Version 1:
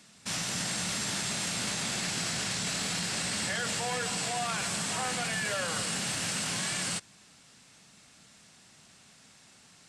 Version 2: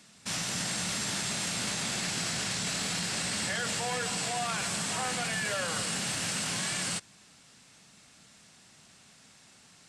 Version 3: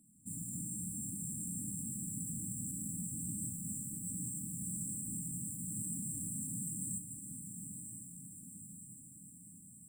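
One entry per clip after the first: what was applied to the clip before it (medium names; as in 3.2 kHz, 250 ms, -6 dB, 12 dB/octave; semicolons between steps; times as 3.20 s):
no audible change
echo that smears into a reverb 968 ms, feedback 59%, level -7 dB; modulation noise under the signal 16 dB; FFT band-reject 320–7300 Hz; trim -4.5 dB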